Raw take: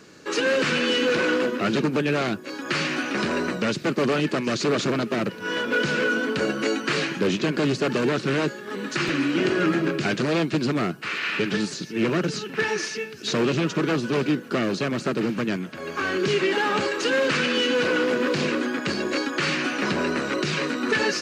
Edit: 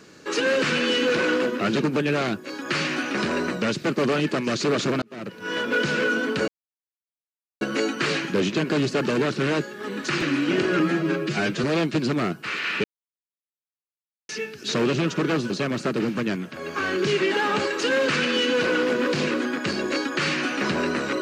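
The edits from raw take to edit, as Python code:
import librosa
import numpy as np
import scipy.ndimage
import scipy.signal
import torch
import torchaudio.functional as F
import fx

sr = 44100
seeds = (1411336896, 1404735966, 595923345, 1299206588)

y = fx.edit(x, sr, fx.fade_in_span(start_s=5.02, length_s=0.57),
    fx.insert_silence(at_s=6.48, length_s=1.13),
    fx.stretch_span(start_s=9.67, length_s=0.56, factor=1.5),
    fx.silence(start_s=11.43, length_s=1.45),
    fx.cut(start_s=14.09, length_s=0.62), tone=tone)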